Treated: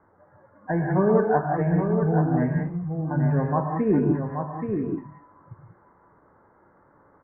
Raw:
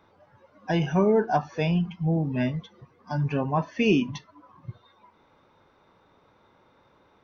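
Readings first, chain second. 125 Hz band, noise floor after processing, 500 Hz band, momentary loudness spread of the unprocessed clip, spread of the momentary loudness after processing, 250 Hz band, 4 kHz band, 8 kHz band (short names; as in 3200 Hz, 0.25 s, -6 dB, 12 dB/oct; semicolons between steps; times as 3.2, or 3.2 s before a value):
+4.0 dB, -59 dBFS, +3.0 dB, 22 LU, 9 LU, +3.0 dB, under -40 dB, n/a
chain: steep low-pass 1900 Hz 72 dB/oct; echo 0.828 s -6 dB; non-linear reverb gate 0.21 s rising, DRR 2 dB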